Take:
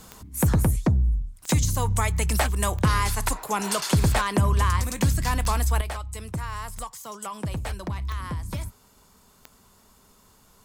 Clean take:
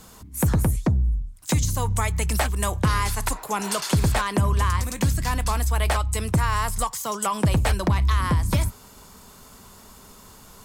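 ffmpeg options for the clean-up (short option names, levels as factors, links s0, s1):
-af "adeclick=t=4,asetnsamples=n=441:p=0,asendcmd='5.81 volume volume 10dB',volume=1"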